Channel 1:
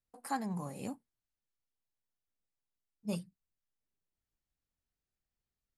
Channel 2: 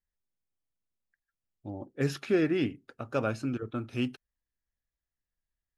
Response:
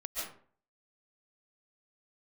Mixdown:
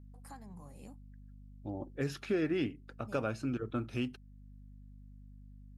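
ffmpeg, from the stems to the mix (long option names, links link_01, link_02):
-filter_complex "[0:a]acompressor=threshold=-38dB:ratio=3,volume=-10.5dB[link_01];[1:a]aeval=exprs='val(0)+0.00282*(sin(2*PI*50*n/s)+sin(2*PI*2*50*n/s)/2+sin(2*PI*3*50*n/s)/3+sin(2*PI*4*50*n/s)/4+sin(2*PI*5*50*n/s)/5)':channel_layout=same,volume=-0.5dB[link_02];[link_01][link_02]amix=inputs=2:normalize=0,alimiter=limit=-23dB:level=0:latency=1:release=491"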